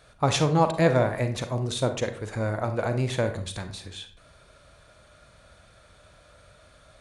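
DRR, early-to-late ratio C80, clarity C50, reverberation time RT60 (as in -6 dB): 8.0 dB, 14.5 dB, 10.0 dB, 0.45 s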